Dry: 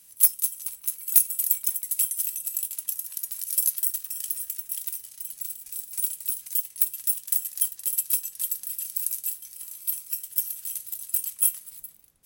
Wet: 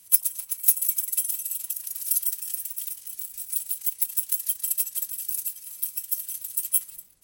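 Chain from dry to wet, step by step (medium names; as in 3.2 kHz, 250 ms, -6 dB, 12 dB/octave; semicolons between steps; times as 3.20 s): repeats whose band climbs or falls 136 ms, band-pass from 800 Hz, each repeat 1.4 oct, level -12 dB; time stretch by phase-locked vocoder 0.59×; trim +2 dB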